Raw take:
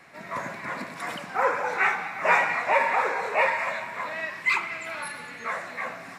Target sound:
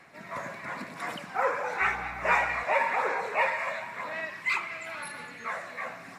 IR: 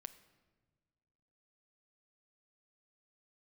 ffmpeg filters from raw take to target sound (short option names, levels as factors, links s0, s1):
-filter_complex "[0:a]asettb=1/sr,asplit=3[s0][s1][s2];[s0]atrim=end=1.814[s3];[s1]atrim=start=1.81:end=2.64,asetpts=PTS-STARTPTS,afade=t=in:d=0.004:c=qsin,afade=t=out:st=0.826:d=0.004:c=qsin,aeval=exprs='val(0)+0.00562*(sin(2*PI*60*n/s)+sin(2*PI*2*60*n/s)/2+sin(2*PI*3*60*n/s)/3+sin(2*PI*4*60*n/s)/4+sin(2*PI*5*60*n/s)/5)':c=same[s4];[s2]atrim=start=2.636[s5];[s3][s4]acrossfade=d=0.004:c1=hsin:c2=qsin[s6];[s6][s5]acrossfade=d=0.004:c1=qsin:c2=hsin,aphaser=in_gain=1:out_gain=1:delay=1.8:decay=0.24:speed=0.96:type=sinusoidal,volume=0.631"